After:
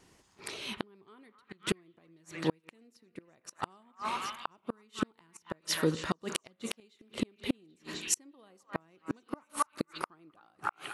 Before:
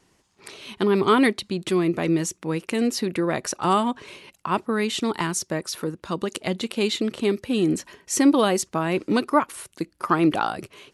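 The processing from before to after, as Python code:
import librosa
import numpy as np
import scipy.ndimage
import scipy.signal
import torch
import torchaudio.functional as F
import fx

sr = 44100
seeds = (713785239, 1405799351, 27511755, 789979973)

y = fx.echo_stepped(x, sr, ms=260, hz=1300.0, octaves=0.7, feedback_pct=70, wet_db=-4.5)
y = fx.rev_spring(y, sr, rt60_s=1.1, pass_ms=(31, 42), chirp_ms=35, drr_db=15.0)
y = fx.gate_flip(y, sr, shuts_db=-16.0, range_db=-39)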